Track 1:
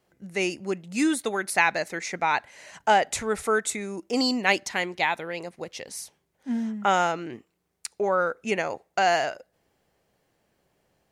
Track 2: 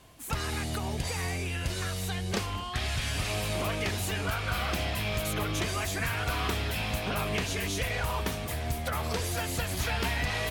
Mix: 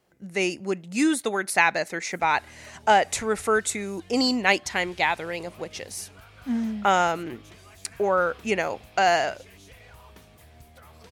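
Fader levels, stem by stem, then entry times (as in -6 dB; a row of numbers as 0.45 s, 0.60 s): +1.5 dB, -18.5 dB; 0.00 s, 1.90 s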